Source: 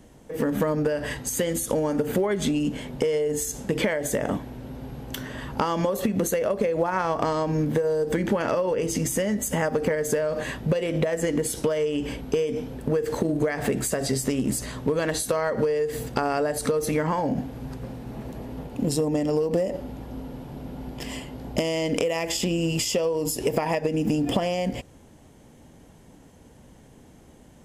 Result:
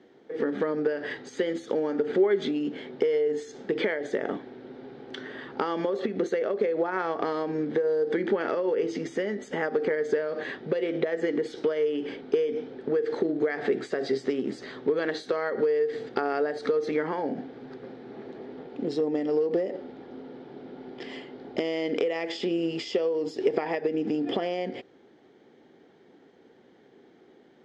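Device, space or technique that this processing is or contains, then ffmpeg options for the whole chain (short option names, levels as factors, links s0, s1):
phone earpiece: -af "highpass=360,equalizer=f=380:t=q:w=4:g=8,equalizer=f=600:t=q:w=4:g=-7,equalizer=f=1000:t=q:w=4:g=-10,equalizer=f=2700:t=q:w=4:g=-9,lowpass=f=3900:w=0.5412,lowpass=f=3900:w=1.3066"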